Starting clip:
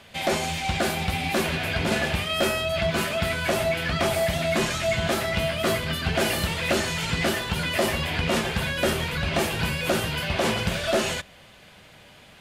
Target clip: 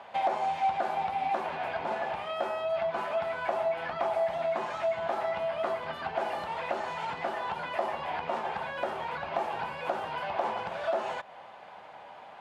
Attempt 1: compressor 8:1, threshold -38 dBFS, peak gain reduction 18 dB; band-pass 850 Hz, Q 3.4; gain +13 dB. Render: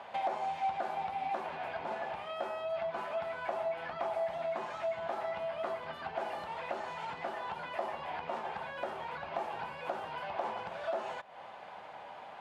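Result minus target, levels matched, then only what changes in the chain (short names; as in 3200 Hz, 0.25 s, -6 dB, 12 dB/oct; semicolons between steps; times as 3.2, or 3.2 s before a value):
compressor: peak gain reduction +5.5 dB
change: compressor 8:1, threshold -31.5 dBFS, peak gain reduction 12.5 dB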